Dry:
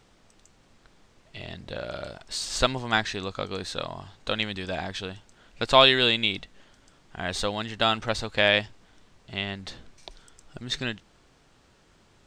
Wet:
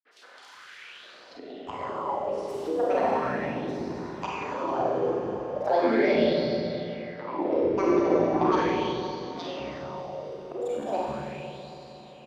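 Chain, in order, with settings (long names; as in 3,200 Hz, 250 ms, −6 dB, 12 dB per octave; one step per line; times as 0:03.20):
noise gate with hold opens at −48 dBFS
band-pass filter sweep 2,600 Hz → 400 Hz, 0:00.76–0:01.41
dynamic equaliser 4,400 Hz, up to −4 dB, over −59 dBFS, Q 0.87
granular cloud 100 ms, pitch spread up and down by 12 semitones
rotating-speaker cabinet horn 7 Hz
on a send: echo with a time of its own for lows and highs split 460 Hz, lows 111 ms, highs 267 ms, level −10.5 dB
on the sum: four-comb reverb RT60 2.5 s, combs from 31 ms, DRR −6 dB
in parallel at −3 dB: upward compression, threshold −33 dBFS
on the sum: multiband delay without the direct sound highs, lows 310 ms, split 220 Hz
auto-filter bell 0.38 Hz 400–4,500 Hz +12 dB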